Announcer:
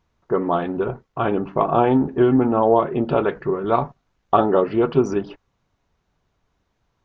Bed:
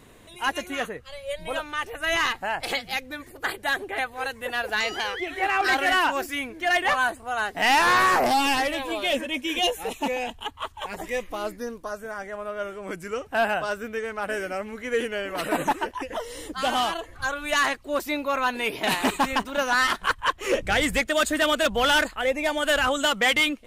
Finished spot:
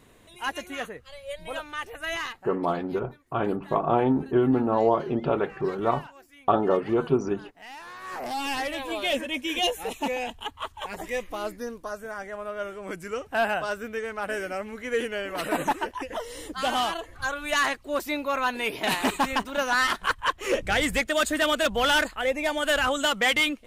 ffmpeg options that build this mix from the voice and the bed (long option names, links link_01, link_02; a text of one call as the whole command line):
ffmpeg -i stem1.wav -i stem2.wav -filter_complex "[0:a]adelay=2150,volume=-5.5dB[link_01];[1:a]volume=17.5dB,afade=type=out:start_time=1.98:duration=0.56:silence=0.112202,afade=type=in:start_time=8.01:duration=0.98:silence=0.0794328[link_02];[link_01][link_02]amix=inputs=2:normalize=0" out.wav